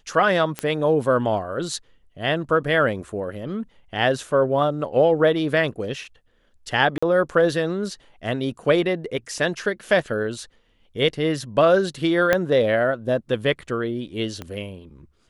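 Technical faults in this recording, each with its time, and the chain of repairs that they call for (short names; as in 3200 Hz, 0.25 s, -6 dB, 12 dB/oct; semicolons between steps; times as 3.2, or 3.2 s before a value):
0.59 pop -11 dBFS
6.98–7.03 gap 45 ms
12.33 pop -5 dBFS
14.42 pop -18 dBFS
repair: de-click; interpolate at 6.98, 45 ms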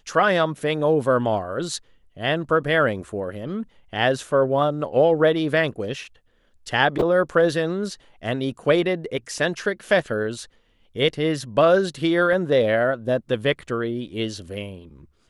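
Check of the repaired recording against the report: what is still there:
12.33 pop
14.42 pop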